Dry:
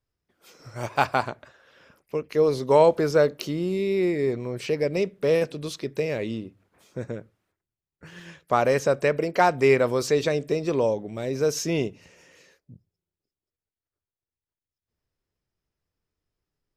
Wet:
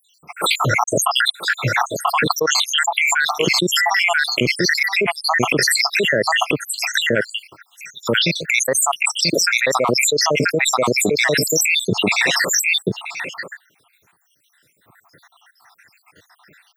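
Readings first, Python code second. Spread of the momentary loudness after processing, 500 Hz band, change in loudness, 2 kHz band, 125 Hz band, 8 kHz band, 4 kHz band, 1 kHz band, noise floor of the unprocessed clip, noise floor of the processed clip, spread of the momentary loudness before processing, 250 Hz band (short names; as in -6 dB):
6 LU, 0.0 dB, +7.0 dB, +16.5 dB, +5.0 dB, +20.5 dB, +21.0 dB, +7.0 dB, under -85 dBFS, -62 dBFS, 14 LU, +4.0 dB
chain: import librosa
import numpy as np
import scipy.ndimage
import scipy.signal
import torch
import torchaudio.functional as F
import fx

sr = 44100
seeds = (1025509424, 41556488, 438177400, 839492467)

p1 = fx.spec_dropout(x, sr, seeds[0], share_pct=84)
p2 = scipy.signal.sosfilt(scipy.signal.butter(4, 120.0, 'highpass', fs=sr, output='sos'), p1)
p3 = fx.peak_eq(p2, sr, hz=1800.0, db=9.0, octaves=2.0)
p4 = p3 + fx.echo_single(p3, sr, ms=986, db=-12.0, dry=0)
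p5 = fx.dynamic_eq(p4, sr, hz=920.0, q=2.4, threshold_db=-36.0, ratio=4.0, max_db=3)
p6 = fx.env_flatten(p5, sr, amount_pct=100)
y = p6 * 10.0 ** (-1.0 / 20.0)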